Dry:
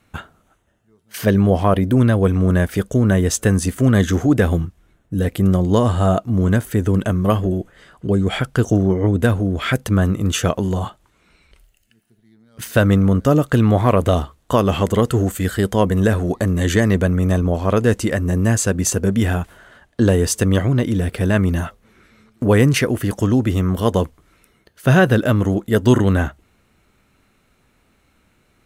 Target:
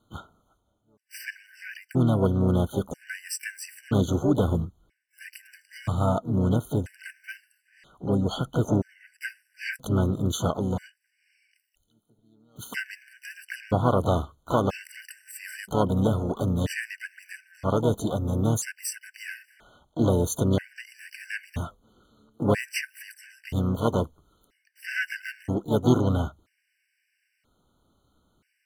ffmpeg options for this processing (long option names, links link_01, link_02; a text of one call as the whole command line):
ffmpeg -i in.wav -filter_complex "[0:a]asplit=3[link_01][link_02][link_03];[link_02]asetrate=58866,aresample=44100,atempo=0.749154,volume=-7dB[link_04];[link_03]asetrate=88200,aresample=44100,atempo=0.5,volume=-13dB[link_05];[link_01][link_04][link_05]amix=inputs=3:normalize=0,afftfilt=real='re*gt(sin(2*PI*0.51*pts/sr)*(1-2*mod(floor(b*sr/1024/1500),2)),0)':imag='im*gt(sin(2*PI*0.51*pts/sr)*(1-2*mod(floor(b*sr/1024/1500),2)),0)':win_size=1024:overlap=0.75,volume=-8dB" out.wav